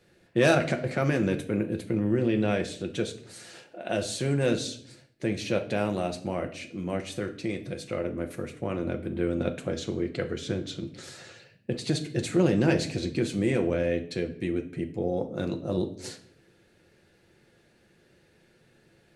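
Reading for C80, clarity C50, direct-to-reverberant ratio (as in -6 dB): 17.0 dB, 12.5 dB, 4.5 dB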